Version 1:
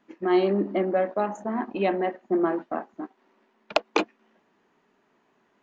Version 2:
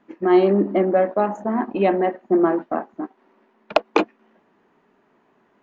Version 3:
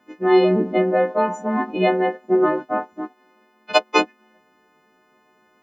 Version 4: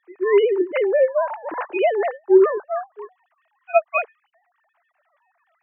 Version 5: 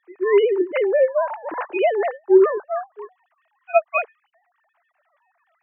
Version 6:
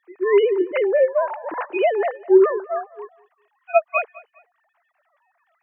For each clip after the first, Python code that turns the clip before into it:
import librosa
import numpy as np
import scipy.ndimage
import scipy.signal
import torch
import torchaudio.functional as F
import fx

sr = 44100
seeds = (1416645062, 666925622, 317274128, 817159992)

y1 = fx.high_shelf(x, sr, hz=3100.0, db=-11.5)
y1 = y1 * 10.0 ** (6.5 / 20.0)
y2 = fx.freq_snap(y1, sr, grid_st=3)
y3 = fx.sine_speech(y2, sr)
y4 = y3
y5 = fx.echo_feedback(y4, sr, ms=204, feedback_pct=34, wet_db=-22.0)